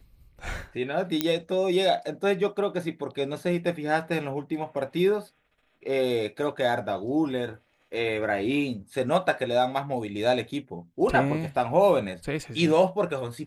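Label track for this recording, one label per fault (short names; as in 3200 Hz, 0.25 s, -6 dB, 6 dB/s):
1.210000	1.210000	pop -8 dBFS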